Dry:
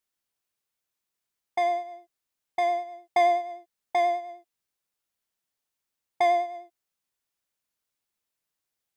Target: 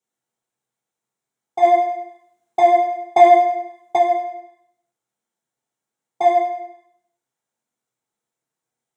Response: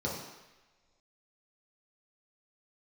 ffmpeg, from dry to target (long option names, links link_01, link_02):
-filter_complex "[1:a]atrim=start_sample=2205,asetrate=70560,aresample=44100[link_01];[0:a][link_01]afir=irnorm=-1:irlink=0,asplit=3[link_02][link_03][link_04];[link_02]afade=type=out:start_time=1.62:duration=0.02[link_05];[link_03]acontrast=56,afade=type=in:start_time=1.62:duration=0.02,afade=type=out:start_time=3.97:duration=0.02[link_06];[link_04]afade=type=in:start_time=3.97:duration=0.02[link_07];[link_05][link_06][link_07]amix=inputs=3:normalize=0"